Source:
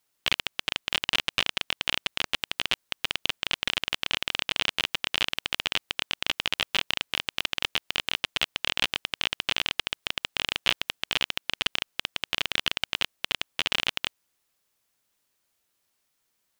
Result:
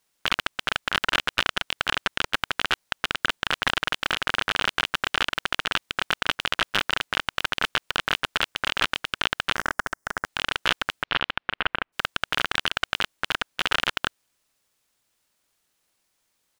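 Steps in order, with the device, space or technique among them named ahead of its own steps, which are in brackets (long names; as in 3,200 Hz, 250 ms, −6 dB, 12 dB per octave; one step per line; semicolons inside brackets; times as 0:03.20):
octave pedal (pitch-shifted copies added −12 semitones −1 dB)
0:09.56–0:10.26: flat-topped bell 3,200 Hz −15.5 dB 1.1 octaves
0:11.02–0:11.92: low-pass filter 4,300 Hz → 2,500 Hz 24 dB per octave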